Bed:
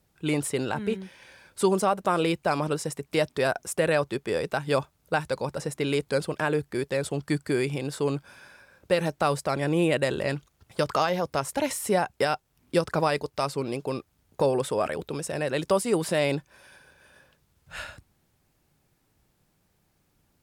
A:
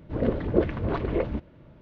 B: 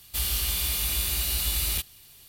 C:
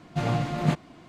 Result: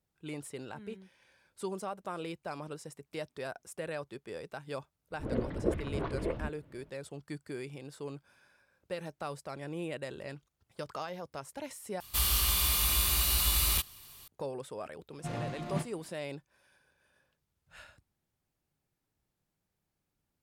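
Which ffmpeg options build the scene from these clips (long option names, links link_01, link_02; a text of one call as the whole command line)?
ffmpeg -i bed.wav -i cue0.wav -i cue1.wav -i cue2.wav -filter_complex "[0:a]volume=-15dB[link_01];[1:a]flanger=delay=0.8:depth=7.5:regen=75:speed=1.5:shape=sinusoidal[link_02];[2:a]equalizer=frequency=1100:width_type=o:width=0.44:gain=10.5[link_03];[3:a]asplit=2[link_04][link_05];[link_05]adelay=31,volume=-12dB[link_06];[link_04][link_06]amix=inputs=2:normalize=0[link_07];[link_01]asplit=2[link_08][link_09];[link_08]atrim=end=12.004[link_10];[link_03]atrim=end=2.28,asetpts=PTS-STARTPTS,volume=-1dB[link_11];[link_09]atrim=start=14.276[link_12];[link_02]atrim=end=1.81,asetpts=PTS-STARTPTS,volume=-3.5dB,afade=type=in:duration=0.02,afade=type=out:start_time=1.79:duration=0.02,adelay=5100[link_13];[link_07]atrim=end=1.08,asetpts=PTS-STARTPTS,volume=-11.5dB,afade=type=in:duration=0.1,afade=type=out:start_time=0.98:duration=0.1,adelay=665028S[link_14];[link_10][link_11]acrossfade=duration=0.004:curve1=hsin:curve2=hsin[link_15];[link_15][link_12]acrossfade=duration=0.004:curve1=hsin:curve2=hsin[link_16];[link_16][link_13][link_14]amix=inputs=3:normalize=0" out.wav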